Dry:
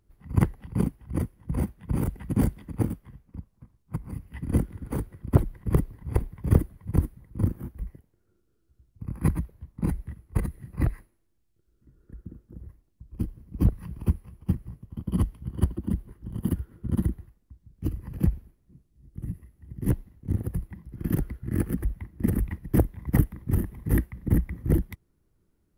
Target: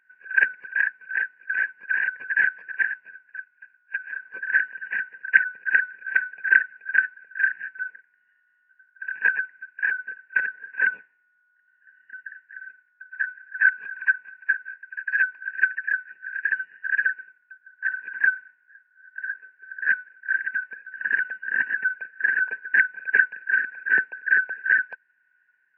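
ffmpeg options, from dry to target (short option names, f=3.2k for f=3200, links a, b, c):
-af "afftfilt=real='real(if(lt(b,272),68*(eq(floor(b/68),0)*1+eq(floor(b/68),1)*0+eq(floor(b/68),2)*3+eq(floor(b/68),3)*2)+mod(b,68),b),0)':imag='imag(if(lt(b,272),68*(eq(floor(b/68),0)*1+eq(floor(b/68),1)*0+eq(floor(b/68),2)*3+eq(floor(b/68),3)*2)+mod(b,68),b),0)':win_size=2048:overlap=0.75,highpass=f=160:w=0.5412,highpass=f=160:w=1.3066,equalizer=f=300:t=q:w=4:g=-3,equalizer=f=580:t=q:w=4:g=-6,equalizer=f=970:t=q:w=4:g=9,equalizer=f=2.4k:t=q:w=4:g=4,lowpass=f=2.6k:w=0.5412,lowpass=f=2.6k:w=1.3066,volume=1dB"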